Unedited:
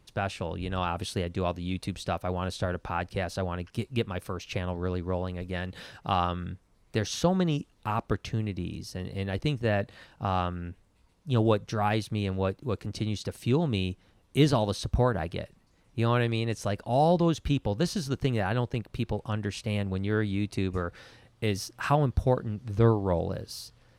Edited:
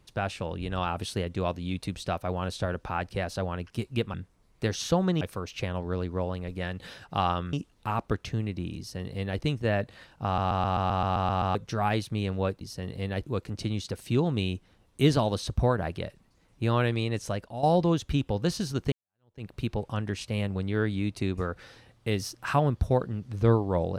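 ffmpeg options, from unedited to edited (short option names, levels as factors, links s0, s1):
-filter_complex "[0:a]asplit=18[s0][s1][s2][s3][s4][s5][s6][s7][s8][s9][s10][s11][s12][s13][s14][s15][s16][s17];[s0]atrim=end=4.142[s18];[s1]atrim=start=6.458:end=7.532[s19];[s2]atrim=start=4.138:end=6.462[s20];[s3]atrim=start=7.528:end=10.382[s21];[s4]atrim=start=10.248:end=10.382[s22];[s5]atrim=start=10.248:end=10.382[s23];[s6]atrim=start=10.248:end=10.382[s24];[s7]atrim=start=10.248:end=10.382[s25];[s8]atrim=start=10.248:end=10.382[s26];[s9]atrim=start=10.248:end=10.382[s27];[s10]atrim=start=10.248:end=10.382[s28];[s11]atrim=start=10.248:end=10.382[s29];[s12]atrim=start=10.248:end=10.382[s30];[s13]atrim=start=11.548:end=12.612[s31];[s14]atrim=start=8.778:end=9.422[s32];[s15]atrim=start=12.608:end=16.99,asetpts=PTS-STARTPTS,afade=t=out:st=4.002:d=0.38:silence=0.266073[s33];[s16]atrim=start=16.99:end=18.28,asetpts=PTS-STARTPTS,afade=t=in:d=0.004:c=hsin:silence=0.266073,afade=t=out:st=1.286:d=0.004:c=hsin[s34];[s17]atrim=start=18.28,asetpts=PTS-STARTPTS,afade=t=in:d=0.54:c=exp[s35];[s18][s19]acrossfade=d=0.004:c1=hsin:c2=hsin[s36];[s36][s20]acrossfade=d=0.004:c1=hsin:c2=hsin[s37];[s37][s21]acrossfade=d=0.004:c1=hsin:c2=hsin[s38];[s38][s22]acrossfade=d=0.004:c1=hsin:c2=hsin[s39];[s39][s23]acrossfade=d=0.004:c1=hsin:c2=hsin[s40];[s40][s24]acrossfade=d=0.004:c1=hsin:c2=hsin[s41];[s41][s25]acrossfade=d=0.004:c1=hsin:c2=hsin[s42];[s42][s26]acrossfade=d=0.004:c1=hsin:c2=hsin[s43];[s43][s27]acrossfade=d=0.004:c1=hsin:c2=hsin[s44];[s44][s28]acrossfade=d=0.004:c1=hsin:c2=hsin[s45];[s45][s29]acrossfade=d=0.004:c1=hsin:c2=hsin[s46];[s46][s30]acrossfade=d=0.004:c1=hsin:c2=hsin[s47];[s47][s31]acrossfade=d=0.004:c1=hsin:c2=hsin[s48];[s48][s32]acrossfade=d=0.004:c1=hsin:c2=hsin[s49];[s33][s34][s35]concat=n=3:v=0:a=1[s50];[s49][s50]acrossfade=d=0.004:c1=hsin:c2=hsin"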